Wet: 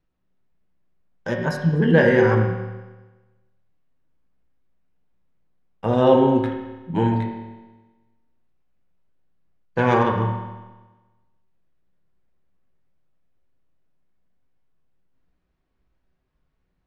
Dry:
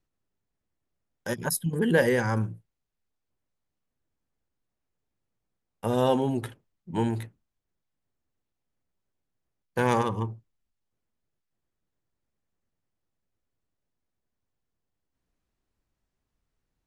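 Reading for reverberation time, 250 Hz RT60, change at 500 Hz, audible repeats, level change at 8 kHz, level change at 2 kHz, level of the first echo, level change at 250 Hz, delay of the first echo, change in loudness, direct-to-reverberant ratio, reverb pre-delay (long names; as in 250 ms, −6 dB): 1.2 s, 1.2 s, +8.0 dB, no echo audible, below −10 dB, +6.5 dB, no echo audible, +8.0 dB, no echo audible, +7.0 dB, 0.5 dB, 5 ms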